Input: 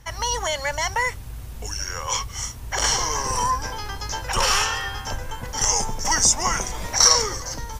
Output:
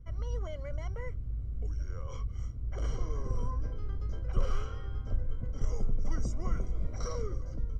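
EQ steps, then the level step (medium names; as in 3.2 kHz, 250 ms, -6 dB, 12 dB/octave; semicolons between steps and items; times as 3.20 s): boxcar filter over 50 samples; bass shelf 84 Hz +9.5 dB; -6.5 dB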